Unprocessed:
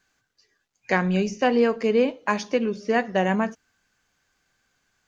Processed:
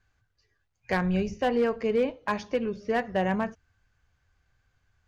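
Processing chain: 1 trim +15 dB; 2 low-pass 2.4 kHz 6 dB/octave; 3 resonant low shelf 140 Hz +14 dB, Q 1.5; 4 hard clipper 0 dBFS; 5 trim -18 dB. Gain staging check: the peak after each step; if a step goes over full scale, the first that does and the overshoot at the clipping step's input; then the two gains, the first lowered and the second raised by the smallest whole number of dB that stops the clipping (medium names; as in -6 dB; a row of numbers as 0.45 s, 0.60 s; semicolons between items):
+8.0 dBFS, +7.0 dBFS, +5.5 dBFS, 0.0 dBFS, -18.0 dBFS; step 1, 5.5 dB; step 1 +9 dB, step 5 -12 dB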